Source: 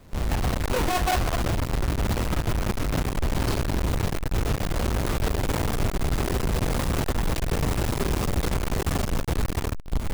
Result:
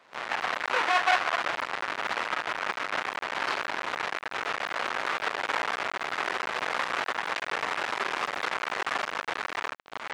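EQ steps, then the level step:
high-pass filter 1,100 Hz 12 dB per octave
dynamic equaliser 1,800 Hz, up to +4 dB, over −49 dBFS, Q 0.88
head-to-tape spacing loss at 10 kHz 26 dB
+8.5 dB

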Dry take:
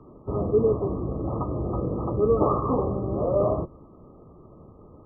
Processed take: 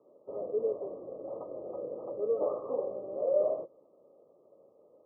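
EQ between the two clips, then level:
four-pole ladder band-pass 600 Hz, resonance 70%
high-frequency loss of the air 420 metres
low-shelf EQ 440 Hz +12 dB
−5.0 dB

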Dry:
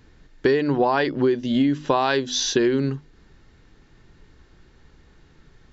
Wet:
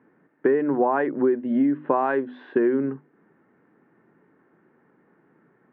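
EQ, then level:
high-pass filter 190 Hz 24 dB per octave
low-pass filter 1,900 Hz 24 dB per octave
high-frequency loss of the air 380 metres
0.0 dB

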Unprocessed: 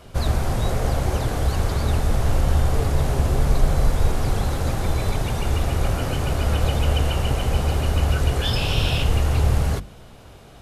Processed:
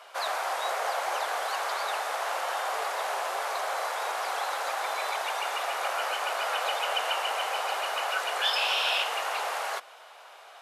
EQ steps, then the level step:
Bessel high-pass filter 1,200 Hz, order 6
spectral tilt −4.5 dB per octave
high-shelf EQ 11,000 Hz +6.5 dB
+8.0 dB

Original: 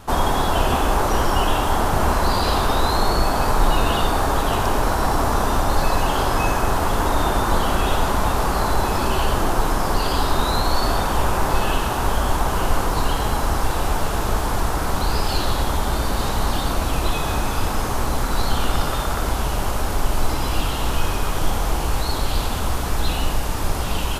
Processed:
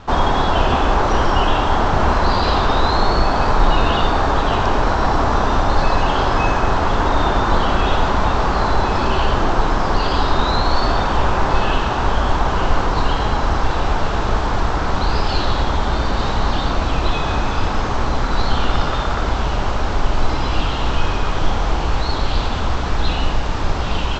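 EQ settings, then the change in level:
Chebyshev low-pass filter 7,900 Hz, order 10
high-frequency loss of the air 200 metres
high-shelf EQ 3,400 Hz +7.5 dB
+4.0 dB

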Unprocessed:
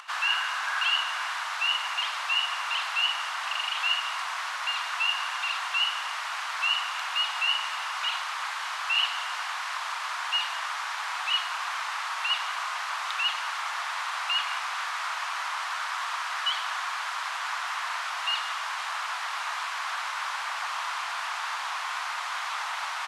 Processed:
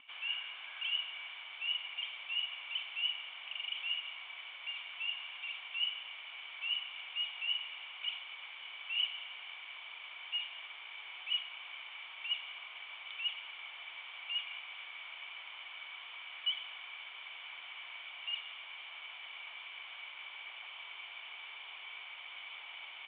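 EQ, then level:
formant resonators in series i
low-shelf EQ 350 Hz +4.5 dB
+6.0 dB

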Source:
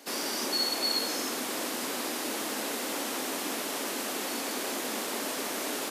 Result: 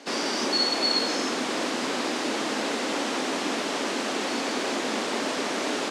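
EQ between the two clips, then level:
Bessel low-pass filter 5,300 Hz, order 4
low-shelf EQ 170 Hz +3 dB
+6.5 dB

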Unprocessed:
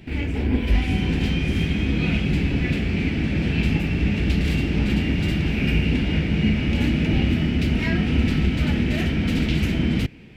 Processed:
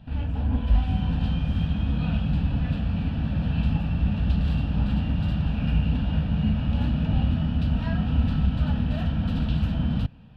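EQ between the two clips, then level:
high-frequency loss of the air 480 metres
high-shelf EQ 2,400 Hz +11 dB
phaser with its sweep stopped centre 890 Hz, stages 4
0.0 dB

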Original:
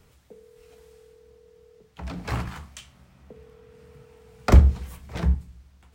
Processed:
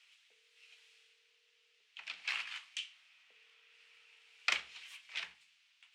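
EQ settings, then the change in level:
four-pole ladder band-pass 3,100 Hz, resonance 50%
+11.5 dB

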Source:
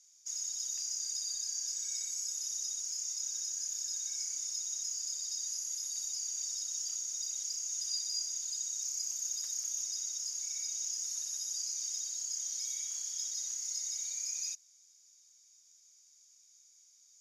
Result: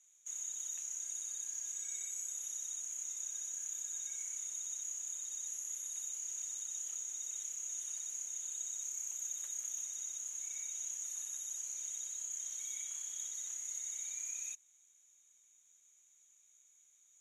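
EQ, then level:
Butterworth band-reject 5,000 Hz, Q 1.5
low-pass filter 12,000 Hz 12 dB per octave
+1.0 dB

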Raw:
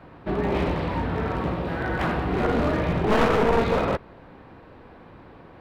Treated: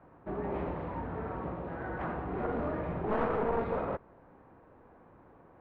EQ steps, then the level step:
low-pass filter 1,300 Hz 12 dB per octave
low-shelf EQ 400 Hz −5.5 dB
−7.5 dB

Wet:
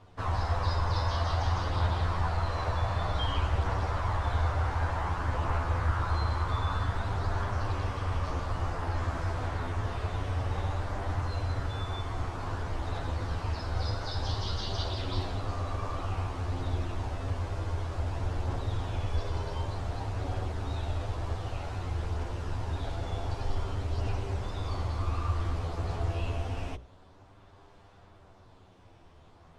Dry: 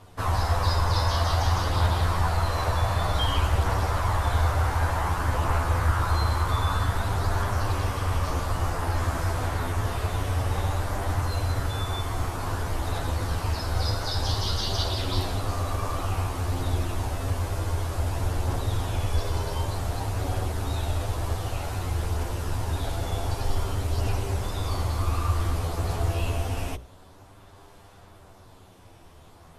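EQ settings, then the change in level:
high-frequency loss of the air 97 metres
−5.0 dB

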